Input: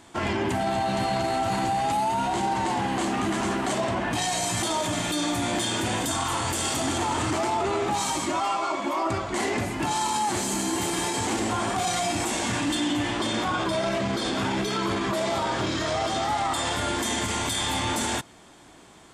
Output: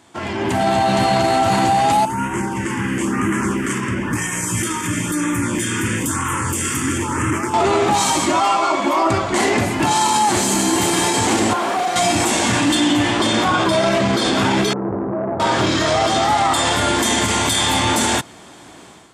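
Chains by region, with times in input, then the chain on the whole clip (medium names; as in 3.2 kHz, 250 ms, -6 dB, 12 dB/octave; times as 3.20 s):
2.05–7.54 s: static phaser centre 1.7 kHz, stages 4 + LFO notch sine 1 Hz 610–4500 Hz
11.53–11.96 s: one-bit delta coder 64 kbps, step -46 dBFS + high-pass 350 Hz + hard clipper -24.5 dBFS
14.73–15.40 s: Gaussian low-pass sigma 11 samples + transformer saturation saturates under 490 Hz
whole clip: high-pass 70 Hz; level rider gain up to 10 dB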